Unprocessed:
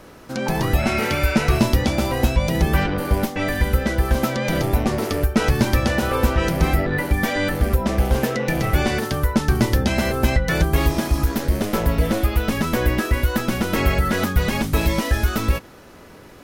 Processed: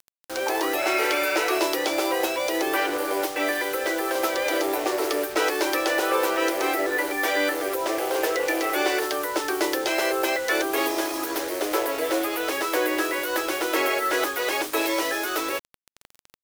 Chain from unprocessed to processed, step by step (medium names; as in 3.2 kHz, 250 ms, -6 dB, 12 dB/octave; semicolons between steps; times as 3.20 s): steep high-pass 300 Hz 96 dB/octave; bit crusher 6-bit